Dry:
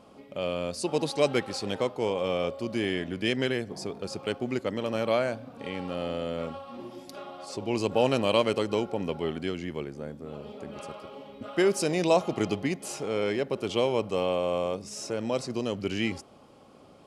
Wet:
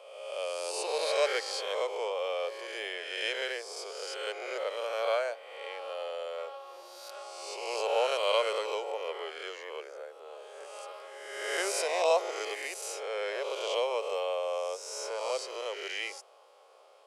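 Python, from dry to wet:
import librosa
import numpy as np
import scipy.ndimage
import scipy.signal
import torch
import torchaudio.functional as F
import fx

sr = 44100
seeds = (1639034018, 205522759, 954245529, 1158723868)

y = fx.spec_swells(x, sr, rise_s=1.27)
y = scipy.signal.sosfilt(scipy.signal.butter(8, 450.0, 'highpass', fs=sr, output='sos'), y)
y = F.gain(torch.from_numpy(y), -4.5).numpy()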